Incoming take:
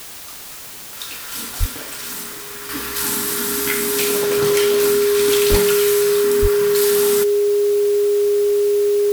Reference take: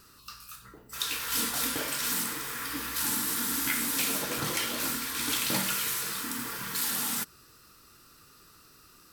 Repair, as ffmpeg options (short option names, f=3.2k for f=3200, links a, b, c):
-filter_complex "[0:a]bandreject=f=410:w=30,asplit=3[a][b][c];[a]afade=t=out:st=1.59:d=0.02[d];[b]highpass=f=140:w=0.5412,highpass=f=140:w=1.3066,afade=t=in:st=1.59:d=0.02,afade=t=out:st=1.71:d=0.02[e];[c]afade=t=in:st=1.71:d=0.02[f];[d][e][f]amix=inputs=3:normalize=0,asplit=3[g][h][i];[g]afade=t=out:st=5.5:d=0.02[j];[h]highpass=f=140:w=0.5412,highpass=f=140:w=1.3066,afade=t=in:st=5.5:d=0.02,afade=t=out:st=5.62:d=0.02[k];[i]afade=t=in:st=5.62:d=0.02[l];[j][k][l]amix=inputs=3:normalize=0,asplit=3[m][n][o];[m]afade=t=out:st=6.41:d=0.02[p];[n]highpass=f=140:w=0.5412,highpass=f=140:w=1.3066,afade=t=in:st=6.41:d=0.02,afade=t=out:st=6.53:d=0.02[q];[o]afade=t=in:st=6.53:d=0.02[r];[p][q][r]amix=inputs=3:normalize=0,afwtdn=0.018,asetnsamples=n=441:p=0,asendcmd='2.69 volume volume -8dB',volume=0dB"